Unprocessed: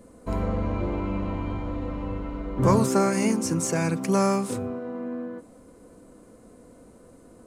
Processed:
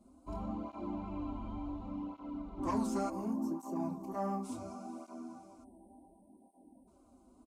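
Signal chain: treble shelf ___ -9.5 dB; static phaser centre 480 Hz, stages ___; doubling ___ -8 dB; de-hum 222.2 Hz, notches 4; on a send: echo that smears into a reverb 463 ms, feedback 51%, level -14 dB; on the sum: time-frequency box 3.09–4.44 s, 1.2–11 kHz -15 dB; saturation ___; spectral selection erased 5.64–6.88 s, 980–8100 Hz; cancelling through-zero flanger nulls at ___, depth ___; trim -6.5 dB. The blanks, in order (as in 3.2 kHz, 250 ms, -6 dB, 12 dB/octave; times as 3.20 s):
6.9 kHz, 6, 27 ms, -16.5 dBFS, 0.69 Hz, 7.2 ms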